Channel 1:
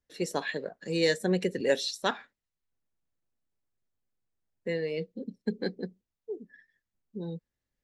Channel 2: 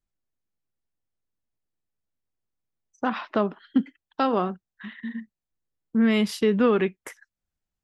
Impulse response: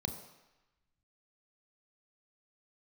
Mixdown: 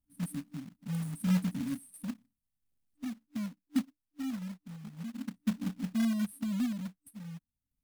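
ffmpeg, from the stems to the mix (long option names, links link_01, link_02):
-filter_complex "[0:a]highshelf=frequency=7000:gain=-4,volume=3dB[link_01];[1:a]highpass=51,acontrast=37,volume=-13.5dB,asplit=2[link_02][link_03];[link_03]apad=whole_len=345523[link_04];[link_01][link_04]sidechaincompress=threshold=-38dB:ratio=6:attack=16:release=1360[link_05];[link_05][link_02]amix=inputs=2:normalize=0,afftfilt=real='re*(1-between(b*sr/4096,300,8200))':imag='im*(1-between(b*sr/4096,300,8200))':win_size=4096:overlap=0.75,acrusher=bits=3:mode=log:mix=0:aa=0.000001"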